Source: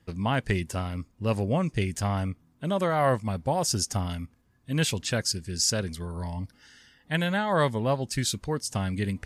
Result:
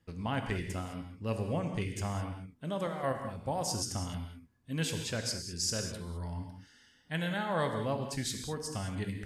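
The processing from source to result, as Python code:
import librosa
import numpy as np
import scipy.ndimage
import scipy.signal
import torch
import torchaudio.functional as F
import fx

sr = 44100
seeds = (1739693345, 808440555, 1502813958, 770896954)

y = fx.level_steps(x, sr, step_db=11, at=(2.87, 3.37))
y = fx.rev_gated(y, sr, seeds[0], gate_ms=230, shape='flat', drr_db=4.5)
y = y * librosa.db_to_amplitude(-8.5)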